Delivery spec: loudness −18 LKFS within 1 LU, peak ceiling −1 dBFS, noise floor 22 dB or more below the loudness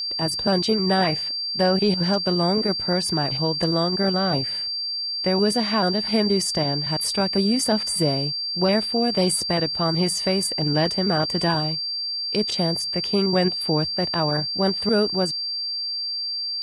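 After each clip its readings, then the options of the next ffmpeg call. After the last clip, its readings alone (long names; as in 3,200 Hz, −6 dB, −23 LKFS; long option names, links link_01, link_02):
interfering tone 4,700 Hz; level of the tone −25 dBFS; integrated loudness −21.5 LKFS; sample peak −8.5 dBFS; target loudness −18.0 LKFS
→ -af "bandreject=frequency=4700:width=30"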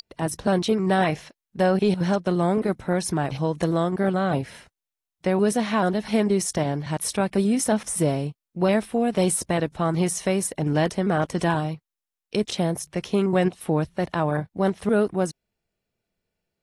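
interfering tone none found; integrated loudness −24.0 LKFS; sample peak −10.0 dBFS; target loudness −18.0 LKFS
→ -af "volume=6dB"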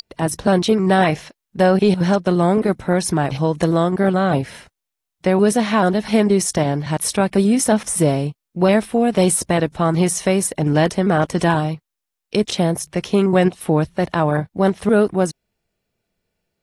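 integrated loudness −18.0 LKFS; sample peak −4.0 dBFS; background noise floor −82 dBFS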